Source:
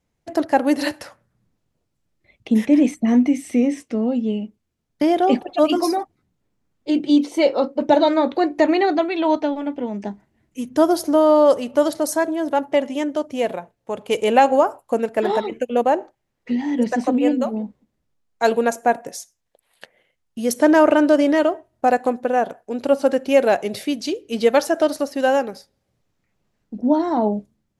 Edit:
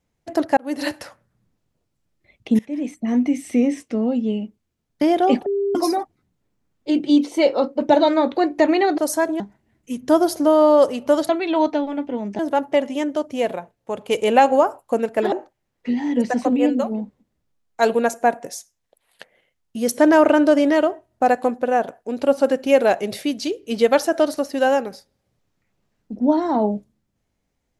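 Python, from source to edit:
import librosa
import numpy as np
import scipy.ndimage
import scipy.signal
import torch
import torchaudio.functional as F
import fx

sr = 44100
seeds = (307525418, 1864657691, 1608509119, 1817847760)

y = fx.edit(x, sr, fx.fade_in_span(start_s=0.57, length_s=0.35),
    fx.fade_in_from(start_s=2.59, length_s=0.91, floor_db=-21.5),
    fx.bleep(start_s=5.46, length_s=0.29, hz=399.0, db=-18.0),
    fx.swap(start_s=8.98, length_s=1.1, other_s=11.97, other_length_s=0.42),
    fx.cut(start_s=15.32, length_s=0.62), tone=tone)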